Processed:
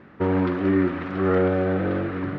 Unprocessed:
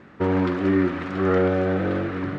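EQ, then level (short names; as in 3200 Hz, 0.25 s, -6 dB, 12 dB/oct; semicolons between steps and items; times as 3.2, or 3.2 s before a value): air absorption 160 m; 0.0 dB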